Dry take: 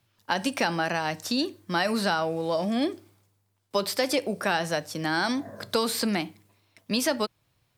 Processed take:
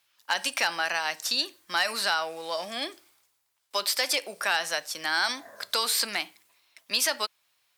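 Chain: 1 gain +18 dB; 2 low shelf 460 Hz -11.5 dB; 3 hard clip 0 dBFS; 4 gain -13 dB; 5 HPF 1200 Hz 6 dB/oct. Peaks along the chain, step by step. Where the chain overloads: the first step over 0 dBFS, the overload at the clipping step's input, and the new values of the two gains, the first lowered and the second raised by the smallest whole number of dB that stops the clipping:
+6.5, +5.5, 0.0, -13.0, -12.0 dBFS; step 1, 5.5 dB; step 1 +12 dB, step 4 -7 dB

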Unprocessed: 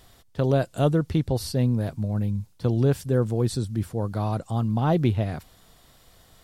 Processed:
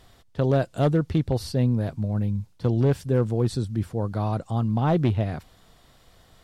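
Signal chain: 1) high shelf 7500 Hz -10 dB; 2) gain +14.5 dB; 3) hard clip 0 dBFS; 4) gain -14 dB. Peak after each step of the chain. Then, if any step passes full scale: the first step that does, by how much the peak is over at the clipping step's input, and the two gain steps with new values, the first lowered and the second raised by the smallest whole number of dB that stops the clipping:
-10.5, +4.0, 0.0, -14.0 dBFS; step 2, 4.0 dB; step 2 +10.5 dB, step 4 -10 dB

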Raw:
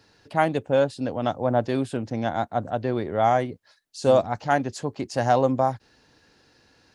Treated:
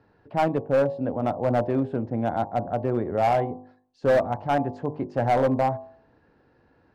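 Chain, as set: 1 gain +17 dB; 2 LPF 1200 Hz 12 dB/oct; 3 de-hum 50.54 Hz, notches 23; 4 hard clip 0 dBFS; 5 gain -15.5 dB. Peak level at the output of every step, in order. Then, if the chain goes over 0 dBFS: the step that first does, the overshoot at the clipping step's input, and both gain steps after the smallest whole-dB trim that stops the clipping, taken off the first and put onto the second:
+10.5, +10.0, +9.5, 0.0, -15.5 dBFS; step 1, 9.5 dB; step 1 +7 dB, step 5 -5.5 dB

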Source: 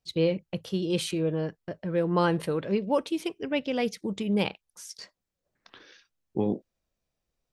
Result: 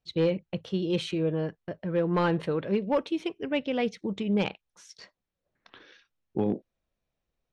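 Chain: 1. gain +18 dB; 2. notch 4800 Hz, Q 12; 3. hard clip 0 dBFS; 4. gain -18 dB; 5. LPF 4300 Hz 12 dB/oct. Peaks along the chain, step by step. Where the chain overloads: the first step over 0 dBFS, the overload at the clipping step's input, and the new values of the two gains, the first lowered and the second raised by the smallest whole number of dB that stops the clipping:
+7.0, +7.0, 0.0, -18.0, -17.5 dBFS; step 1, 7.0 dB; step 1 +11 dB, step 4 -11 dB

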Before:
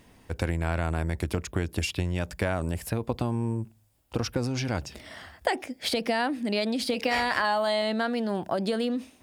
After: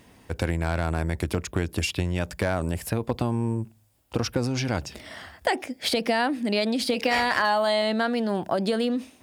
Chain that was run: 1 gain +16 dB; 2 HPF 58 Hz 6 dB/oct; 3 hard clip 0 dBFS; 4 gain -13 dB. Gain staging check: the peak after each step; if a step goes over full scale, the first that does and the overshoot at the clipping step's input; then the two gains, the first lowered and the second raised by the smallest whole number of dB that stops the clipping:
+6.5, +6.5, 0.0, -13.0 dBFS; step 1, 6.5 dB; step 1 +9 dB, step 4 -6 dB

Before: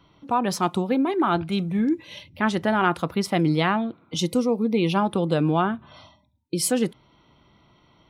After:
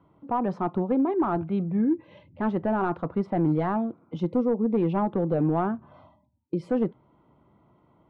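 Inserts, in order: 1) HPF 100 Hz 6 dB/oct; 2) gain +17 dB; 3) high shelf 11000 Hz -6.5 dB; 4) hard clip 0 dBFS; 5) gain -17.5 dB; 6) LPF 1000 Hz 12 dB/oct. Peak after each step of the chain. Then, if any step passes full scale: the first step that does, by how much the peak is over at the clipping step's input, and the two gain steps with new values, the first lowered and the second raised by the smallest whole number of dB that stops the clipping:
-7.0, +10.0, +10.0, 0.0, -17.5, -17.0 dBFS; step 2, 10.0 dB; step 2 +7 dB, step 5 -7.5 dB

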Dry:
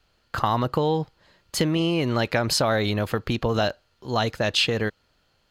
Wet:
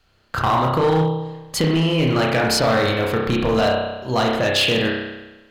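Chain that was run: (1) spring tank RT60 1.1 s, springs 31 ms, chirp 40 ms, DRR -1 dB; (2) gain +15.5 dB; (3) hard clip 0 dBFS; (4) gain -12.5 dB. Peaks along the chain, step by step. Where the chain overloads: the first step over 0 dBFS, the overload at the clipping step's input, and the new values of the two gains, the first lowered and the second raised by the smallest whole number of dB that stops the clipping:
-7.0, +8.5, 0.0, -12.5 dBFS; step 2, 8.5 dB; step 2 +6.5 dB, step 4 -3.5 dB

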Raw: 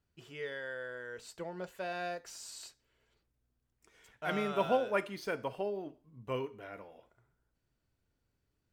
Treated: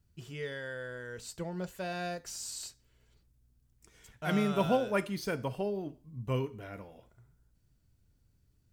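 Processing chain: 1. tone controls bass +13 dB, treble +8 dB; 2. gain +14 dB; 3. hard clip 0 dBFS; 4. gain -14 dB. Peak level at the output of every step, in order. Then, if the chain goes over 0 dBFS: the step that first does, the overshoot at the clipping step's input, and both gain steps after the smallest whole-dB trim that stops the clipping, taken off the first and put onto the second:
-16.0, -2.0, -2.0, -16.0 dBFS; no overload

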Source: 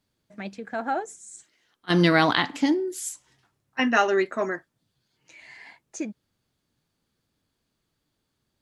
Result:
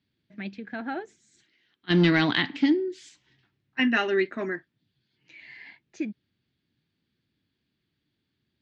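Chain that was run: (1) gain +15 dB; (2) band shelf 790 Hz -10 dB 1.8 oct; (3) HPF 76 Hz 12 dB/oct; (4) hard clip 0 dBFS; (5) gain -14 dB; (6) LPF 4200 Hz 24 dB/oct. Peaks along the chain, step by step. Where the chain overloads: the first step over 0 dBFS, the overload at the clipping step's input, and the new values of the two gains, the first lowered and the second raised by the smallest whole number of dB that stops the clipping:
+10.0, +7.5, +7.0, 0.0, -14.0, -12.0 dBFS; step 1, 7.0 dB; step 1 +8 dB, step 5 -7 dB

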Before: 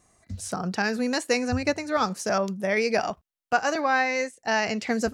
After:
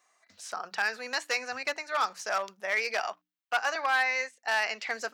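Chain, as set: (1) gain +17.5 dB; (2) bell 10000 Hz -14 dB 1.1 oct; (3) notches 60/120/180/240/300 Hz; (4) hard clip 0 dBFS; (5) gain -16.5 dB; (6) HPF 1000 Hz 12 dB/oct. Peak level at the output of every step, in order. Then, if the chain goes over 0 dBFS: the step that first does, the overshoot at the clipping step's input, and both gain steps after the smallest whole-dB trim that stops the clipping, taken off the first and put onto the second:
+9.0, +8.0, +8.5, 0.0, -16.5, -14.5 dBFS; step 1, 8.5 dB; step 1 +8.5 dB, step 5 -7.5 dB

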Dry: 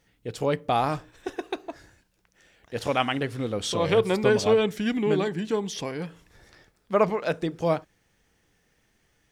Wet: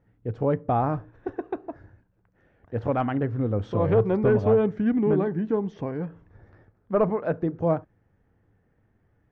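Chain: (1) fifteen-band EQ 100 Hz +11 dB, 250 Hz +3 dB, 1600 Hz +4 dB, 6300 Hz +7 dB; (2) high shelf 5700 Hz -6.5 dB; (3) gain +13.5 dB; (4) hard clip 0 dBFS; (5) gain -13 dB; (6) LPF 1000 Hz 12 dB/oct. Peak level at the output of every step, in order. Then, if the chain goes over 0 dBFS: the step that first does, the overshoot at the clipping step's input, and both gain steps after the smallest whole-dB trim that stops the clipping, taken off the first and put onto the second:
-5.5, -5.5, +8.0, 0.0, -13.0, -12.5 dBFS; step 3, 8.0 dB; step 3 +5.5 dB, step 5 -5 dB

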